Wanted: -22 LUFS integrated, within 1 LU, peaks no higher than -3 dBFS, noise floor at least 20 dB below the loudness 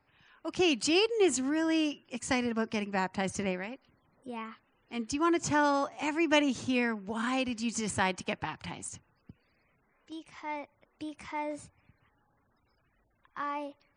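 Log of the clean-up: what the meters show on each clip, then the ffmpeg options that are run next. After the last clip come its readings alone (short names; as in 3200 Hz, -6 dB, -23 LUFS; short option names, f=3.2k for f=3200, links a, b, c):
loudness -31.0 LUFS; peak -12.5 dBFS; loudness target -22.0 LUFS
-> -af "volume=9dB"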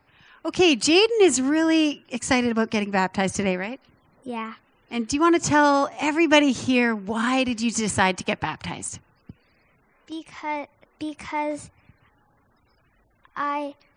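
loudness -22.0 LUFS; peak -3.5 dBFS; noise floor -64 dBFS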